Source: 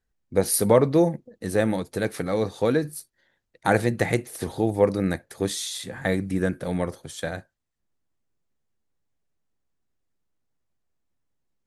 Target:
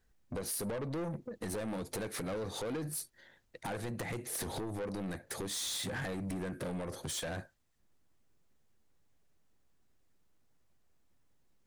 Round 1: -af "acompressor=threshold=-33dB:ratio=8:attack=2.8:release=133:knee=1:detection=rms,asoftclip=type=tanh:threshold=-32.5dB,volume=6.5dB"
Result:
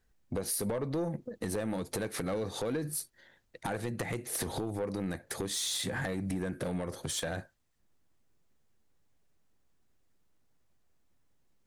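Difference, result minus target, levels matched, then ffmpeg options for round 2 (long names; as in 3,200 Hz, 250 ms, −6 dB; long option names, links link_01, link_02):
soft clipping: distortion −7 dB
-af "acompressor=threshold=-33dB:ratio=8:attack=2.8:release=133:knee=1:detection=rms,asoftclip=type=tanh:threshold=-40.5dB,volume=6.5dB"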